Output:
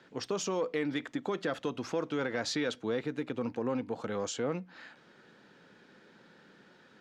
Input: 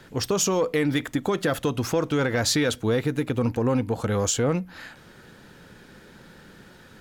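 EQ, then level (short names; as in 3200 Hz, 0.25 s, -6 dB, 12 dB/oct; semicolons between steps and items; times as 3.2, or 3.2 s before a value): three-band isolator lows -22 dB, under 160 Hz, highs -21 dB, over 7200 Hz; high shelf 8400 Hz -6.5 dB; -8.5 dB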